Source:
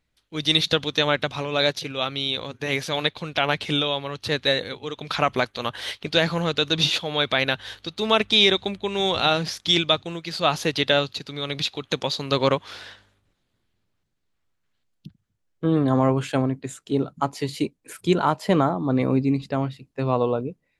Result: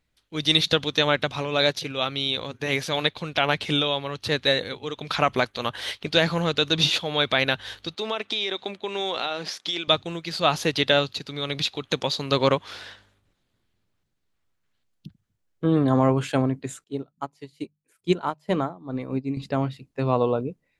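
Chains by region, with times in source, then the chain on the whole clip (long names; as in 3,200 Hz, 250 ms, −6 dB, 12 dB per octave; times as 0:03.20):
0:07.95–0:09.88: high-shelf EQ 9,900 Hz −11.5 dB + downward compressor 10 to 1, threshold −22 dBFS + high-pass filter 320 Hz
0:16.84–0:19.37: mains-hum notches 50/100/150/200 Hz + expander for the loud parts 2.5 to 1, over −31 dBFS
whole clip: no processing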